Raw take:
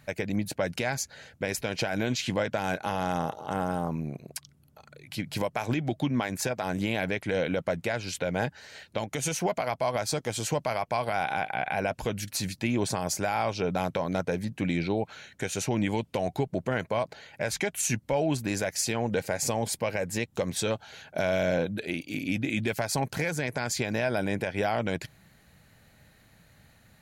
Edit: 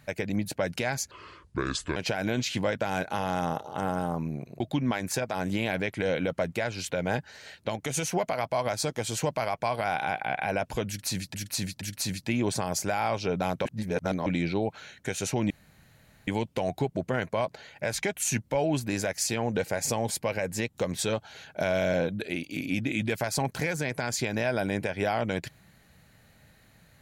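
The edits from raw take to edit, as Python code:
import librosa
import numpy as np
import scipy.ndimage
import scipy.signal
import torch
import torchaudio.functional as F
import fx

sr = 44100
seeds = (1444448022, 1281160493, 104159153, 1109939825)

y = fx.edit(x, sr, fx.speed_span(start_s=1.11, length_s=0.58, speed=0.68),
    fx.cut(start_s=4.33, length_s=1.56),
    fx.repeat(start_s=12.16, length_s=0.47, count=3),
    fx.reverse_span(start_s=14.0, length_s=0.61),
    fx.insert_room_tone(at_s=15.85, length_s=0.77), tone=tone)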